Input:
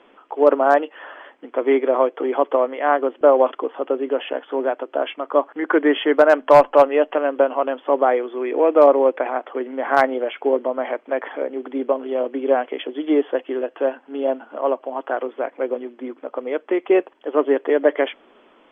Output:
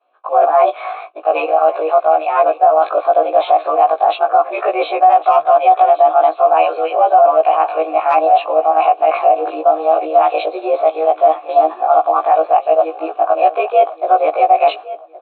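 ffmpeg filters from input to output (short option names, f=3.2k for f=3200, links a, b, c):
-filter_complex "[0:a]afftfilt=real='re':imag='-im':win_size=2048:overlap=0.75,bandreject=f=60:t=h:w=6,bandreject=f=120:t=h:w=6,bandreject=f=180:t=h:w=6,bandreject=f=240:t=h:w=6,areverse,acompressor=threshold=-28dB:ratio=6,areverse,asetrate=54243,aresample=44100,agate=range=-33dB:threshold=-42dB:ratio=3:detection=peak,asplit=3[a][b][c];[a]bandpass=f=730:t=q:w=8,volume=0dB[d];[b]bandpass=f=1.09k:t=q:w=8,volume=-6dB[e];[c]bandpass=f=2.44k:t=q:w=8,volume=-9dB[f];[d][e][f]amix=inputs=3:normalize=0,aecho=1:1:1116|2232|3348:0.126|0.0466|0.0172,alimiter=level_in=28.5dB:limit=-1dB:release=50:level=0:latency=1,volume=-1dB"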